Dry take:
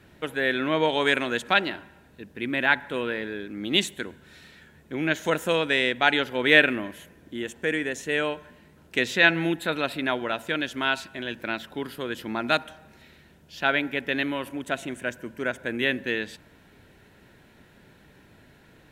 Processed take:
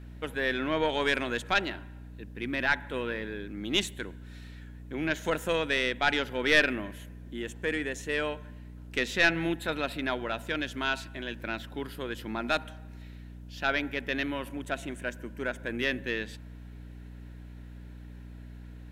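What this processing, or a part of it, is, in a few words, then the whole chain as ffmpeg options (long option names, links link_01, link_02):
valve amplifier with mains hum: -af "aeval=exprs='(tanh(2.51*val(0)+0.45)-tanh(0.45))/2.51':channel_layout=same,aeval=exprs='val(0)+0.00891*(sin(2*PI*60*n/s)+sin(2*PI*2*60*n/s)/2+sin(2*PI*3*60*n/s)/3+sin(2*PI*4*60*n/s)/4+sin(2*PI*5*60*n/s)/5)':channel_layout=same,volume=-2.5dB"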